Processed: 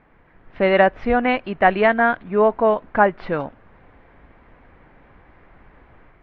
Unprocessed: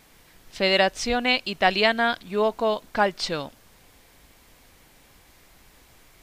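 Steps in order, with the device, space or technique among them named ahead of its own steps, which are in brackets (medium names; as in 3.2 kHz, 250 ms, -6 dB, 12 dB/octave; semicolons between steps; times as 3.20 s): action camera in a waterproof case (low-pass 1.9 kHz 24 dB/octave; level rider gain up to 5 dB; trim +2 dB; AAC 48 kbps 44.1 kHz)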